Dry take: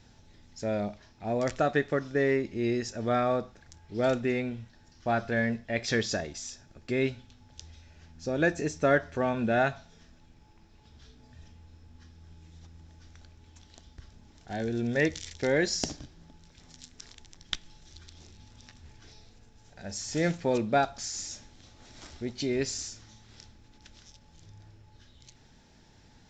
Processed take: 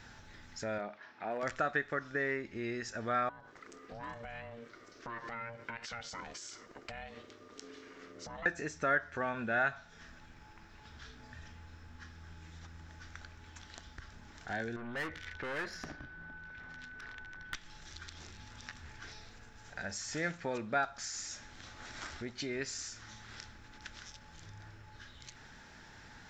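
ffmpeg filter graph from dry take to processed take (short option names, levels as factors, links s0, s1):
-filter_complex "[0:a]asettb=1/sr,asplit=3[s0][s1][s2];[s0]atrim=end=0.784[s3];[s1]atrim=start=0.78:end=1.43,asetpts=PTS-STARTPTS,afade=t=in:d=0.004:c=qsin,afade=t=out:st=0.646:d=0.004:c=qsin,highpass=270,lowpass=3300,asoftclip=type=hard:threshold=0.0708[s4];[s2]atrim=start=1.426[s5];[s3][s4]acrossfade=d=0.004:c1=hsin:c2=qsin[s6];[s6][s5]acrossfade=d=0.004:c1=qsin:c2=hsin,asettb=1/sr,asplit=3[s7][s8][s9];[s7]atrim=end=3.294[s10];[s8]atrim=start=3.29:end=8.46,asetpts=PTS-STARTPTS,afade=t=in:d=0.004:c=qsin,afade=t=out:st=5.166:d=0.004:c=qsin,aeval=exprs='val(0)*sin(2*PI*350*n/s)':c=same,acompressor=threshold=0.00794:ratio=12:attack=3.2:release=140:knee=1:detection=peak,bandreject=f=860:w=22[s11];[s9]atrim=start=8.456[s12];[s10][s11]acrossfade=d=0.004:c1=hsin:c2=qsin[s13];[s13][s12]acrossfade=d=0.004:c1=qsin:c2=hsin,asettb=1/sr,asplit=3[s14][s15][s16];[s14]atrim=end=14.764[s17];[s15]atrim=start=14.76:end=17.54,asetpts=PTS-STARTPTS,afade=t=in:d=0.004:c=qsin,afade=t=out:st=2.776:d=0.004:c=qsin,lowpass=2400,aeval=exprs='(tanh(50.1*val(0)+0.4)-tanh(0.4))/50.1':c=same,aeval=exprs='val(0)+0.000794*sin(2*PI*1500*n/s)':c=same[s18];[s16]atrim=start=17.536[s19];[s17][s18]acrossfade=d=0.004:c1=hsin:c2=qsin[s20];[s20][s19]acrossfade=d=0.004:c1=qsin:c2=hsin,highshelf=f=7600:g=5,acompressor=threshold=0.00447:ratio=2,equalizer=f=1500:w=0.98:g=14"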